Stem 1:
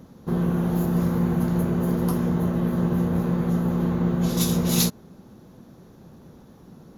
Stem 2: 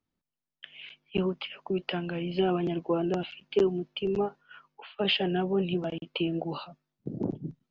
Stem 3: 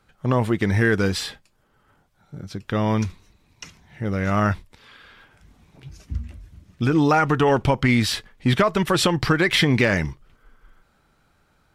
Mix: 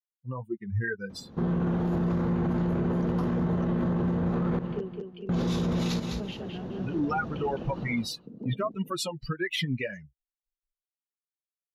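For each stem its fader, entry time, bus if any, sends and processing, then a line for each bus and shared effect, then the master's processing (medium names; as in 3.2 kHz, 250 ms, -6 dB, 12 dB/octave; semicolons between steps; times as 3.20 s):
-2.5 dB, 1.10 s, muted 4.59–5.29 s, no send, echo send -16 dB, low-pass 3.3 kHz 12 dB/octave; level rider gain up to 12.5 dB
-17.5 dB, 1.20 s, no send, echo send -4.5 dB, small resonant body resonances 230/460 Hz, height 14 dB
-1.5 dB, 0.00 s, no send, no echo send, expander on every frequency bin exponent 3; flange 1.8 Hz, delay 4.6 ms, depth 3.7 ms, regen -27%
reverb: none
echo: feedback delay 210 ms, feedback 28%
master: peak limiter -20.5 dBFS, peak gain reduction 15 dB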